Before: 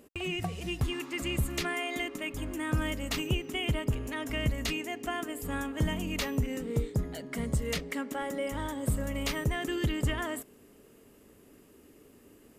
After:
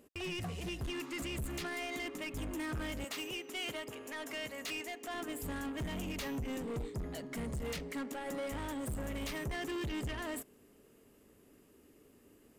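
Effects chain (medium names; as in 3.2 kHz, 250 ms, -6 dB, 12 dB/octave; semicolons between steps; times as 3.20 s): 3.04–5.14 s: high-pass 410 Hz 12 dB/octave; peak limiter -26.5 dBFS, peak gain reduction 6.5 dB; saturation -37 dBFS, distortion -10 dB; upward expansion 1.5:1, over -54 dBFS; trim +2.5 dB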